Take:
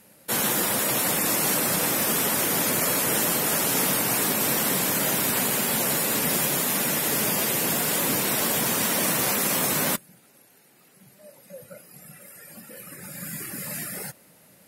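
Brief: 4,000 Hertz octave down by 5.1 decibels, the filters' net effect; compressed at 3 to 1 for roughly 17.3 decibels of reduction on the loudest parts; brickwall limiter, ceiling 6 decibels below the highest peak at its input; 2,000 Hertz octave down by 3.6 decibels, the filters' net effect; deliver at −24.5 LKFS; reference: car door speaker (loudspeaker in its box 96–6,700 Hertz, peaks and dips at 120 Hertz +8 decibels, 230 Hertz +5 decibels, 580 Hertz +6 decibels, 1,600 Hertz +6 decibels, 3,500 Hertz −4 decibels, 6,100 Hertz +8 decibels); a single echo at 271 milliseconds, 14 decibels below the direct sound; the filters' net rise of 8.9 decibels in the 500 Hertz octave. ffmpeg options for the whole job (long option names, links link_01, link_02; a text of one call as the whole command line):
ffmpeg -i in.wav -af "equalizer=frequency=500:width_type=o:gain=7,equalizer=frequency=2000:width_type=o:gain=-8.5,equalizer=frequency=4000:width_type=o:gain=-5,acompressor=threshold=-45dB:ratio=3,alimiter=level_in=9.5dB:limit=-24dB:level=0:latency=1,volume=-9.5dB,highpass=96,equalizer=frequency=120:width_type=q:width=4:gain=8,equalizer=frequency=230:width_type=q:width=4:gain=5,equalizer=frequency=580:width_type=q:width=4:gain=6,equalizer=frequency=1600:width_type=q:width=4:gain=6,equalizer=frequency=3500:width_type=q:width=4:gain=-4,equalizer=frequency=6100:width_type=q:width=4:gain=8,lowpass=frequency=6700:width=0.5412,lowpass=frequency=6700:width=1.3066,aecho=1:1:271:0.2,volume=19dB" out.wav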